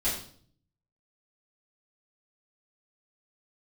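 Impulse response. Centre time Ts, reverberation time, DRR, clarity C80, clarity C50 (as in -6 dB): 38 ms, 0.55 s, -13.0 dB, 8.5 dB, 5.0 dB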